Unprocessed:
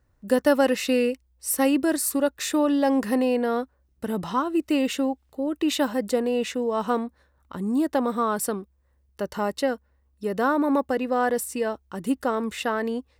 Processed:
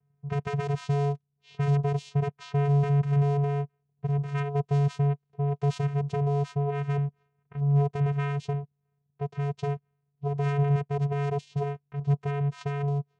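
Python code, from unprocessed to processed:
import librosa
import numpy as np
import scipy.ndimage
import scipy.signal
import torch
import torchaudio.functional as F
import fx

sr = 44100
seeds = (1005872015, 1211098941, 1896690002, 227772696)

y = 10.0 ** (-18.5 / 20.0) * (np.abs((x / 10.0 ** (-18.5 / 20.0) + 3.0) % 4.0 - 2.0) - 1.0)
y = fx.vocoder(y, sr, bands=4, carrier='square', carrier_hz=142.0)
y = fx.env_lowpass(y, sr, base_hz=2200.0, full_db=-24.5)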